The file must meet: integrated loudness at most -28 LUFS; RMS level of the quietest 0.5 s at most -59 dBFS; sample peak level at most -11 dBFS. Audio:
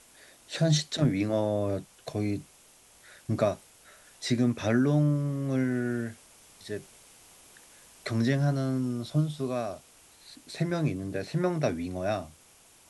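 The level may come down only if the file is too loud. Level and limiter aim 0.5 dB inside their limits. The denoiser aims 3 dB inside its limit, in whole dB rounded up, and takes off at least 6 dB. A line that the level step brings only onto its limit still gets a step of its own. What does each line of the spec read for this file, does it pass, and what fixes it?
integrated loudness -29.5 LUFS: OK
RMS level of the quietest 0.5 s -58 dBFS: fail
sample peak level -12.0 dBFS: OK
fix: denoiser 6 dB, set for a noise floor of -58 dBFS

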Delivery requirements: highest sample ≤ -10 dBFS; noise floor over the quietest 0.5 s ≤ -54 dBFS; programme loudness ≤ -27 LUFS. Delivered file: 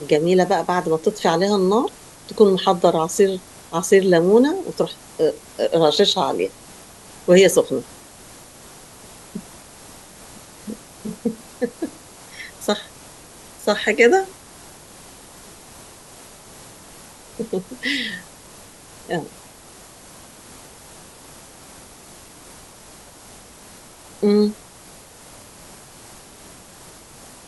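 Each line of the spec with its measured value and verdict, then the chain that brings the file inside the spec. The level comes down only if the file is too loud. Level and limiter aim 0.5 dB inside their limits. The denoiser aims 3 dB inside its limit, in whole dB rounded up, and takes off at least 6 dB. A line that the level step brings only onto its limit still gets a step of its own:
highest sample -2.0 dBFS: fail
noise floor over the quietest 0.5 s -44 dBFS: fail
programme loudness -19.0 LUFS: fail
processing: denoiser 6 dB, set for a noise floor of -44 dBFS; gain -8.5 dB

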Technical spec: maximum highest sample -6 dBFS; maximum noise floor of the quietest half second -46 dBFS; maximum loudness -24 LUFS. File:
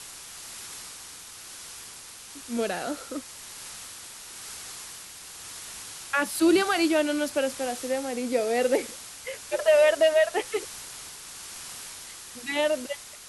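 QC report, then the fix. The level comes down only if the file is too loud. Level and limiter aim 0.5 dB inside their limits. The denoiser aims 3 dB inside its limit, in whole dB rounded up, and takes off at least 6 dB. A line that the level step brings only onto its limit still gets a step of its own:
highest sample -10.5 dBFS: OK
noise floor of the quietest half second -44 dBFS: fail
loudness -26.5 LUFS: OK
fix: denoiser 6 dB, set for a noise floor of -44 dBFS

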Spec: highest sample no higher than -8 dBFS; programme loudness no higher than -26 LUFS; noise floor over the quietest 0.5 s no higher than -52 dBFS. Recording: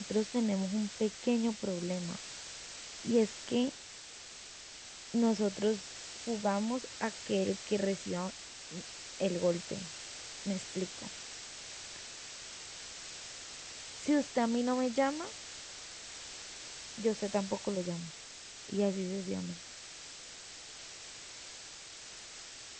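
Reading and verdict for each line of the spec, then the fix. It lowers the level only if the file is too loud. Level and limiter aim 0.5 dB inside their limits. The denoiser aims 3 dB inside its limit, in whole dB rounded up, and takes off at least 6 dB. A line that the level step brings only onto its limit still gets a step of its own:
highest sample -17.5 dBFS: OK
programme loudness -36.5 LUFS: OK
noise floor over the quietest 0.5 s -50 dBFS: fail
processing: denoiser 6 dB, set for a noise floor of -50 dBFS

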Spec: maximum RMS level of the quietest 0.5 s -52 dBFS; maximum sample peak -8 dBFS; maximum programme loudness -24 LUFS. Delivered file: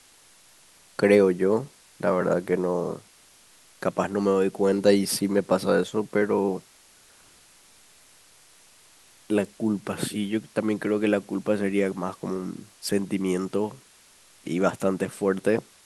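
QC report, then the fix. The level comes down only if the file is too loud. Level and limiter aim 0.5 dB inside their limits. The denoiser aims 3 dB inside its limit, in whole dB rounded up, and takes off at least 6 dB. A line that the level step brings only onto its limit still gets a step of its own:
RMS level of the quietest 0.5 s -55 dBFS: OK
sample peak -5.0 dBFS: fail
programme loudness -25.0 LUFS: OK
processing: limiter -8.5 dBFS

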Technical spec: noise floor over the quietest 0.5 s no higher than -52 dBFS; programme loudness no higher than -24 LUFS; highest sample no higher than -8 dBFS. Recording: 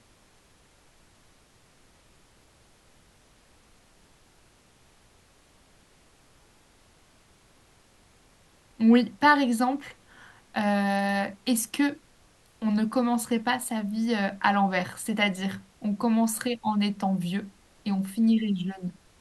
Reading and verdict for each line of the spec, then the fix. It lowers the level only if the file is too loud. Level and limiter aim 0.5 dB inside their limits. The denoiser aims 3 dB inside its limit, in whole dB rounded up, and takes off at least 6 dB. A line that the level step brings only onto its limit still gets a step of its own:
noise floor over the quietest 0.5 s -60 dBFS: OK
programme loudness -26.0 LUFS: OK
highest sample -7.0 dBFS: fail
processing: limiter -8.5 dBFS

